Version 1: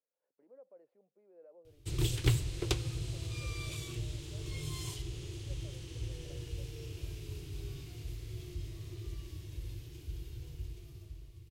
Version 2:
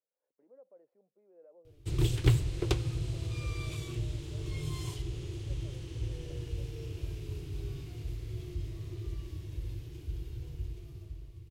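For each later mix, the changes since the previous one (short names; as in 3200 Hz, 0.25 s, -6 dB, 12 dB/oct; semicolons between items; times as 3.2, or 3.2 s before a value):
background +4.0 dB; master: add high shelf 2300 Hz -8 dB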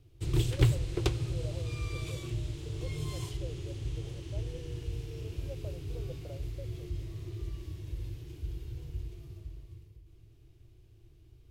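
speech +12.0 dB; background: entry -1.65 s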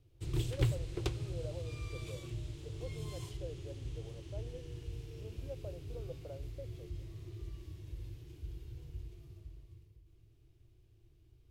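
background -6.5 dB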